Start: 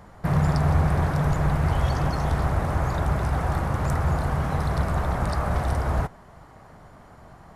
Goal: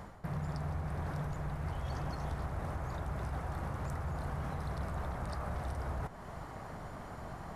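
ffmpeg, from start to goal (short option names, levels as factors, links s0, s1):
-af "areverse,acompressor=threshold=0.0158:ratio=4,areverse,alimiter=level_in=2.51:limit=0.0631:level=0:latency=1:release=214,volume=0.398,volume=1.41"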